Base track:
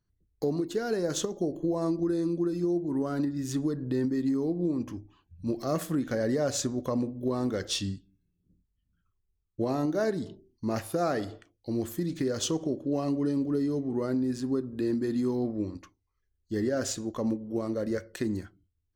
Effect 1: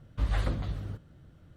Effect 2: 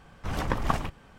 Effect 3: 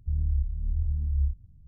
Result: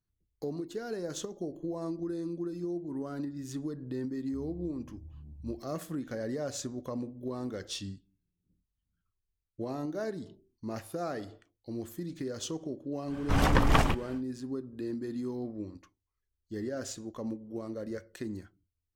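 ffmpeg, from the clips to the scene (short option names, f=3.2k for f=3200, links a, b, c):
-filter_complex "[0:a]volume=-7.5dB[a];[3:a]highpass=190[b];[2:a]aeval=exprs='0.335*sin(PI/2*2*val(0)/0.335)':c=same[c];[b]atrim=end=1.67,asetpts=PTS-STARTPTS,volume=-4dB,afade=t=in:d=0.004:c=hsin,afade=t=out:st=1.666:d=0.004:c=hsin,adelay=4260[d];[c]atrim=end=1.18,asetpts=PTS-STARTPTS,volume=-4dB,afade=t=in:d=0.1,afade=t=out:st=1.08:d=0.1,adelay=13050[e];[a][d][e]amix=inputs=3:normalize=0"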